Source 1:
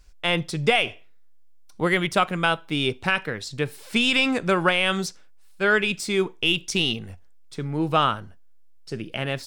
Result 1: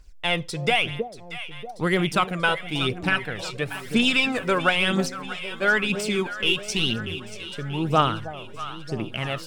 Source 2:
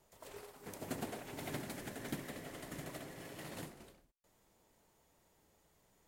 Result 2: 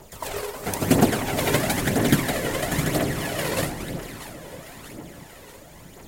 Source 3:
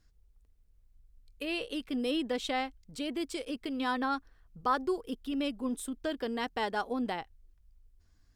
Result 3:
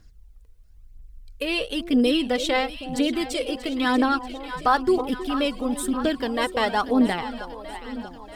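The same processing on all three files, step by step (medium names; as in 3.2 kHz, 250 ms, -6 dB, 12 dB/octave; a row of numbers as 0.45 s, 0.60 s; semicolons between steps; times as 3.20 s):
echo whose repeats swap between lows and highs 318 ms, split 800 Hz, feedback 78%, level -10.5 dB; phaser 1 Hz, delay 2.2 ms, feedback 47%; normalise loudness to -24 LUFS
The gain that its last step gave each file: -2.0 dB, +21.0 dB, +9.5 dB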